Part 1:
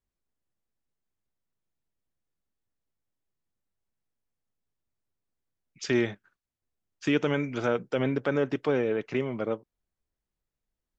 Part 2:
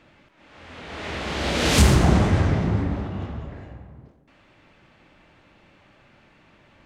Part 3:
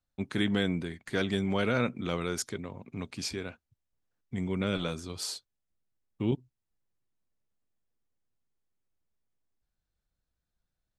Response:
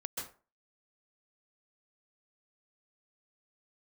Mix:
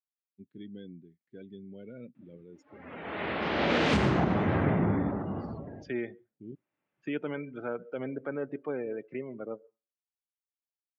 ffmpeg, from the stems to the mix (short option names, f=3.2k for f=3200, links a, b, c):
-filter_complex "[0:a]highshelf=f=3.3k:g=3,volume=-9dB,asplit=3[a][b][c];[b]volume=-15.5dB[d];[1:a]adelay=2150,volume=-0.5dB[e];[2:a]equalizer=f=1.1k:w=1.1:g=-12,adelay=200,volume=-13.5dB[f];[c]apad=whole_len=397232[g];[e][g]sidechaincompress=threshold=-45dB:ratio=8:attack=16:release=1170[h];[3:a]atrim=start_sample=2205[i];[d][i]afir=irnorm=-1:irlink=0[j];[a][h][f][j]amix=inputs=4:normalize=0,afftdn=nr=22:nf=-42,highpass=160,lowpass=2.6k,alimiter=limit=-15.5dB:level=0:latency=1:release=436"